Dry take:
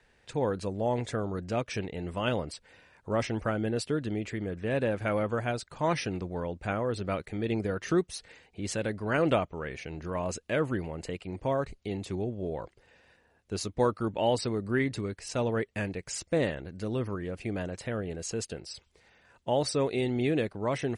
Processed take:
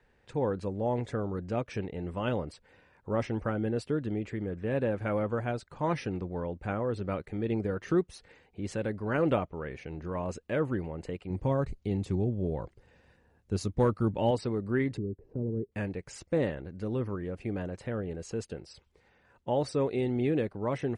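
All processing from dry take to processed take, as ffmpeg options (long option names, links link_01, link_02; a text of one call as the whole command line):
ffmpeg -i in.wav -filter_complex "[0:a]asettb=1/sr,asplit=3[link_01][link_02][link_03];[link_01]atrim=end=11.304[link_04];[link_02]atrim=start=11.3:end=14.31,asetpts=PTS-STARTPTS,afade=type=in:duration=0.004:curve=qsin,afade=type=out:start_time=3.006:duration=0.004:curve=qsin,bass=frequency=250:gain=7,treble=frequency=4000:gain=6,asoftclip=type=hard:threshold=-16dB[link_05];[link_03]atrim=start=14.306[link_06];[link_04][link_05]acrossfade=duration=0.004:curve1=hsin:curve2=qsin[link_07];[link_07][link_06]acrossfade=duration=0.004:curve1=qsin:curve2=hsin,asettb=1/sr,asplit=3[link_08][link_09][link_10];[link_08]atrim=end=14.974[link_11];[link_09]atrim=start=14.97:end=15.72,asetpts=PTS-STARTPTS,afade=type=in:duration=0.004:curve=qsin,afade=type=out:start_time=0.746:duration=0.004:curve=qsin,lowpass=frequency=400:width_type=q:width=3,acrossover=split=250|3000[link_12][link_13][link_14];[link_13]acompressor=threshold=-52dB:ratio=2:attack=3.2:release=140:knee=2.83:detection=peak[link_15];[link_12][link_15][link_14]amix=inputs=3:normalize=0[link_16];[link_10]atrim=start=15.716[link_17];[link_11][link_16]acrossfade=duration=0.004:curve1=hsin:curve2=qsin[link_18];[link_18][link_17]acrossfade=duration=0.004:curve1=qsin:curve2=hsin,highshelf=frequency=2300:gain=-12,bandreject=frequency=660:width=12" out.wav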